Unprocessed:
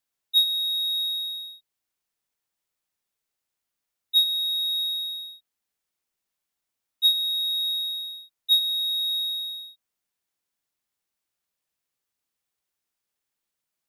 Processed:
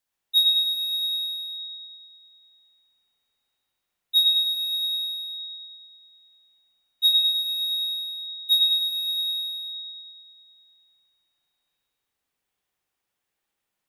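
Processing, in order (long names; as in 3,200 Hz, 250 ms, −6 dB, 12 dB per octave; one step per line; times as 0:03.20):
convolution reverb RT60 2.4 s, pre-delay 62 ms, DRR −4.5 dB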